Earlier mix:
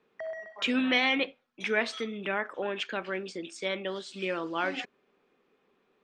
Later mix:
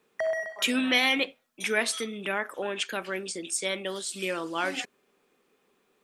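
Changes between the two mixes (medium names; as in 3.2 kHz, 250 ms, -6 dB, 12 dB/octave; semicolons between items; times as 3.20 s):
background +8.5 dB; master: remove distance through air 180 m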